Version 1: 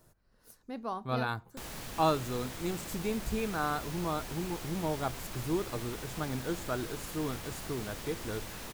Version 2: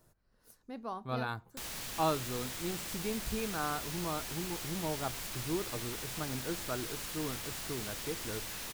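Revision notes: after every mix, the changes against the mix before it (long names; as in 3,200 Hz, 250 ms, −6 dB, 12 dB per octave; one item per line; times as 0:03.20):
speech −3.5 dB
background: add tilt shelving filter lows −5 dB, about 1,400 Hz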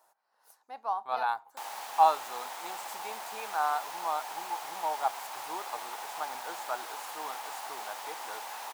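background: add tilt shelving filter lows +5 dB, about 1,400 Hz
master: add high-pass with resonance 830 Hz, resonance Q 5.2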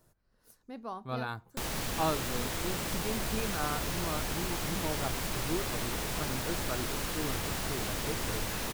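background +8.0 dB
master: remove high-pass with resonance 830 Hz, resonance Q 5.2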